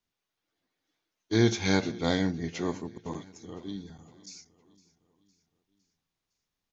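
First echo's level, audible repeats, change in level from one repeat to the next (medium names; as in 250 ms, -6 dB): -20.5 dB, 3, -6.0 dB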